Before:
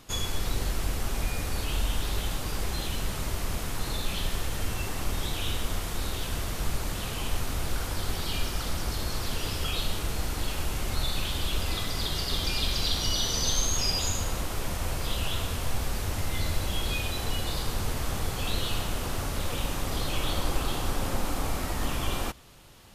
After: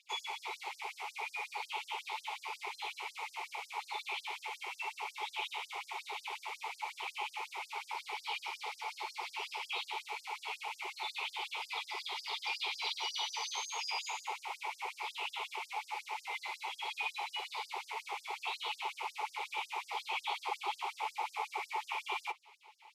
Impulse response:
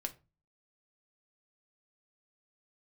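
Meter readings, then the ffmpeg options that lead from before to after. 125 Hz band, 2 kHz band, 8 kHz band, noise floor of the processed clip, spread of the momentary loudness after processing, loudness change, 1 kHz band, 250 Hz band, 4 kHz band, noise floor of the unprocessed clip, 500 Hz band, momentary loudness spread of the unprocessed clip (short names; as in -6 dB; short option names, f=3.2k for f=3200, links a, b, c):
under -40 dB, -2.0 dB, -16.0 dB, -60 dBFS, 5 LU, -8.5 dB, -1.0 dB, under -25 dB, -8.5 dB, -34 dBFS, -15.0 dB, 6 LU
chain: -filter_complex "[0:a]asplit=3[a][b][c];[a]bandpass=f=300:t=q:w=8,volume=0dB[d];[b]bandpass=f=870:t=q:w=8,volume=-6dB[e];[c]bandpass=f=2.24k:t=q:w=8,volume=-9dB[f];[d][e][f]amix=inputs=3:normalize=0,asplit=2[g][h];[1:a]atrim=start_sample=2205,afade=t=out:st=0.13:d=0.01,atrim=end_sample=6174[i];[h][i]afir=irnorm=-1:irlink=0,volume=1dB[j];[g][j]amix=inputs=2:normalize=0,afftfilt=real='re*gte(b*sr/1024,380*pow(4900/380,0.5+0.5*sin(2*PI*5.5*pts/sr)))':imag='im*gte(b*sr/1024,380*pow(4900/380,0.5+0.5*sin(2*PI*5.5*pts/sr)))':win_size=1024:overlap=0.75,volume=9.5dB"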